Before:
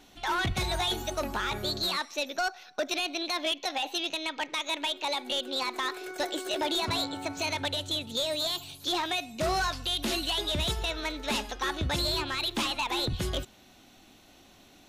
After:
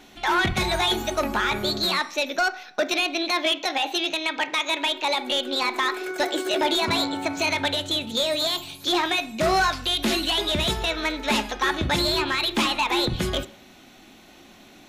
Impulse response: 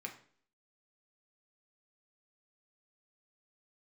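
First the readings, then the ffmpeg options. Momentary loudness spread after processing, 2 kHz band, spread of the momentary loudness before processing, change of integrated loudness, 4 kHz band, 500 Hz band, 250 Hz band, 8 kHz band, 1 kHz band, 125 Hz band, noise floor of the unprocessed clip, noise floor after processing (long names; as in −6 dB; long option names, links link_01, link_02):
4 LU, +8.5 dB, 4 LU, +6.5 dB, +6.0 dB, +7.5 dB, +8.0 dB, +4.5 dB, +7.5 dB, +3.5 dB, −57 dBFS, −50 dBFS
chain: -filter_complex "[0:a]asplit=2[link_01][link_02];[1:a]atrim=start_sample=2205,lowpass=4800[link_03];[link_02][link_03]afir=irnorm=-1:irlink=0,volume=-1.5dB[link_04];[link_01][link_04]amix=inputs=2:normalize=0,volume=4.5dB"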